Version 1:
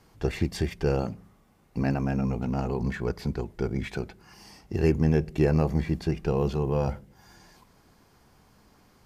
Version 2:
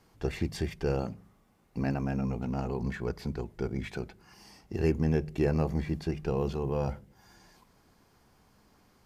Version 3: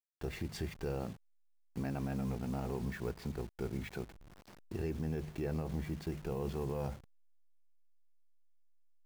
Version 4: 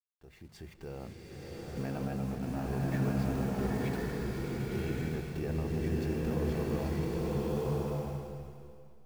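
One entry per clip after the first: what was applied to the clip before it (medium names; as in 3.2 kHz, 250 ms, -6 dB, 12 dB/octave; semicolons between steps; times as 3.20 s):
hum notches 50/100/150 Hz; trim -4 dB
send-on-delta sampling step -44.5 dBFS; peak limiter -24.5 dBFS, peak gain reduction 8.5 dB; trim -4.5 dB
fade-in on the opening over 1.69 s; swelling reverb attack 1160 ms, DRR -5.5 dB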